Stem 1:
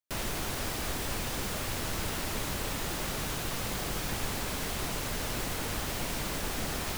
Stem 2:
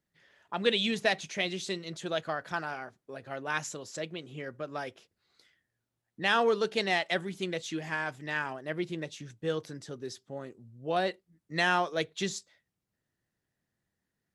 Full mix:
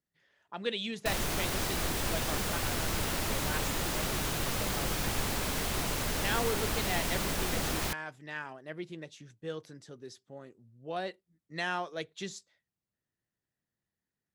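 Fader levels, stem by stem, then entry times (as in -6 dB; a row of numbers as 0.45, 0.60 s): +1.5, -7.0 dB; 0.95, 0.00 s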